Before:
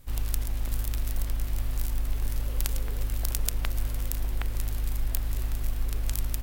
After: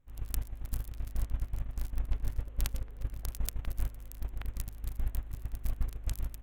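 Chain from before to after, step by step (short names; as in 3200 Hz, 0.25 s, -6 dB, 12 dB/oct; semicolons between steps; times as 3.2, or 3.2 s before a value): Wiener smoothing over 9 samples; gate -24 dBFS, range -16 dB; 0.92–3.32 high shelf 8200 Hz -> 4700 Hz -6 dB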